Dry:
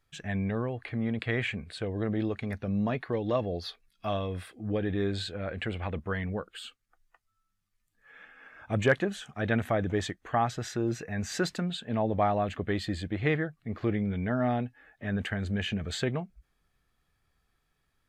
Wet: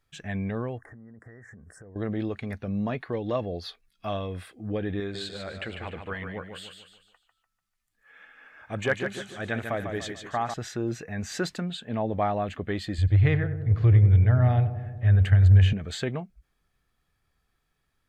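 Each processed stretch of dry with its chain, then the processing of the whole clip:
0.78–1.96 s: Chebyshev band-stop 1.9–5.4 kHz, order 5 + compression 16:1, threshold -44 dBFS
5.00–10.54 s: bass shelf 470 Hz -6 dB + feedback delay 147 ms, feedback 41%, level -6.5 dB
12.98–15.73 s: resonant low shelf 150 Hz +11.5 dB, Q 3 + filtered feedback delay 94 ms, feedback 76%, low-pass 1.1 kHz, level -10 dB
whole clip: none

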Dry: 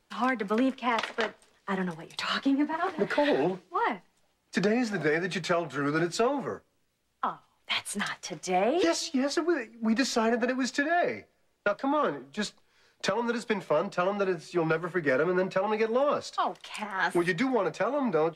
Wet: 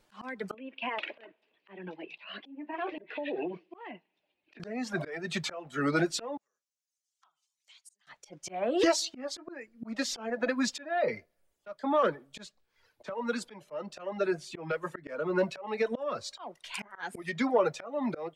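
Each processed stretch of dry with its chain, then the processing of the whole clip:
0.54–4.60 s: cabinet simulation 220–3400 Hz, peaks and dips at 330 Hz +8 dB, 1.3 kHz -8 dB, 2.6 kHz +10 dB + compression 12:1, threshold -30 dBFS
6.37–8.07 s: compression 5:1, threshold -44 dBFS + band-pass filter 6.5 kHz, Q 2.3
whole clip: reverb removal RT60 0.92 s; slow attack 364 ms; peaking EQ 600 Hz +4 dB 0.28 oct; trim +1.5 dB

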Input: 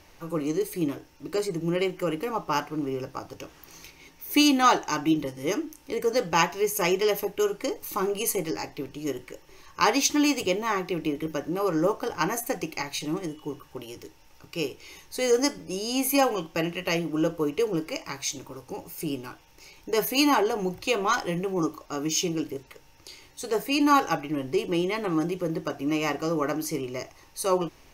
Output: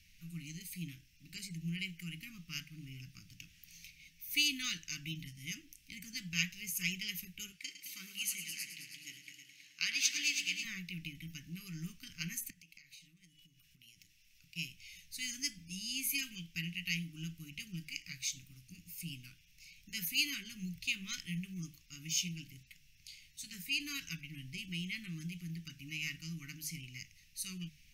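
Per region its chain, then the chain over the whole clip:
7.52–10.65 s: frequency weighting A + multi-head delay 107 ms, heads all three, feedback 40%, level -11 dB
12.50–14.56 s: bass shelf 330 Hz -6.5 dB + compression, threshold -46 dBFS
whole clip: elliptic band-stop 190–2300 Hz, stop band 60 dB; peaking EQ 1.8 kHz +3 dB 2.4 oct; hum notches 50/100/150 Hz; trim -7.5 dB

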